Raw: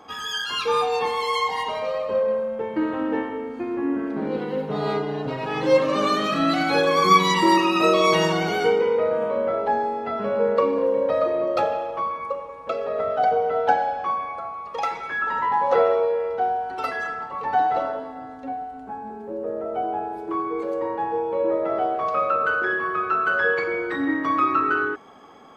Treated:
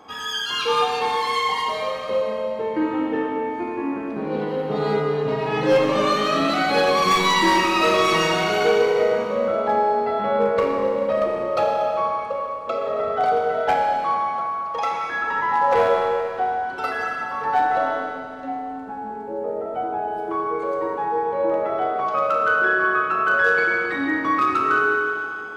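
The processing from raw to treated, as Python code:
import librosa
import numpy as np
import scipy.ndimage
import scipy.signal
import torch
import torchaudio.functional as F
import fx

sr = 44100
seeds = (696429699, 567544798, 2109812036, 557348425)

y = np.clip(10.0 ** (14.0 / 20.0) * x, -1.0, 1.0) / 10.0 ** (14.0 / 20.0)
y = fx.rev_schroeder(y, sr, rt60_s=2.5, comb_ms=26, drr_db=1.0)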